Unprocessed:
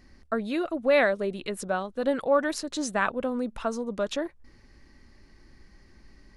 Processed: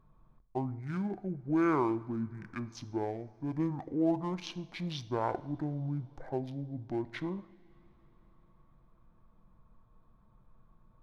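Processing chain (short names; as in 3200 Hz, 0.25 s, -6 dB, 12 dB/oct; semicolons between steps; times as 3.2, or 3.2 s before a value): Wiener smoothing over 9 samples; two-slope reverb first 0.38 s, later 2.5 s, from -18 dB, DRR 13.5 dB; speed mistake 78 rpm record played at 45 rpm; gain -7 dB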